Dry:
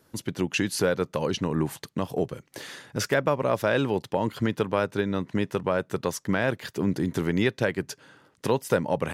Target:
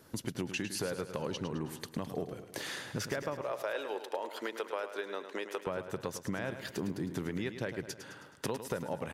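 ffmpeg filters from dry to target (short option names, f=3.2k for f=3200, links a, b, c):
-filter_complex "[0:a]asettb=1/sr,asplit=3[a][b][c];[a]atrim=end=3.414[d];[b]atrim=start=3.41:end=5.67,asetpts=PTS-STARTPTS,afade=t=in:d=0.004:c=qsin,afade=t=out:st=2.256:d=0.004:c=qsin,highpass=f=410:w=0.5412,highpass=f=410:w=1.3066[e];[c]atrim=start=5.666[f];[d][e]acrossfade=d=0.004:c1=hsin:c2=qsin[g];[g][f]acrossfade=d=0.004:c1=qsin:c2=hsin,acompressor=threshold=-39dB:ratio=4,aecho=1:1:106|212|318|424|530|636:0.316|0.168|0.0888|0.0471|0.025|0.0132,volume=3dB"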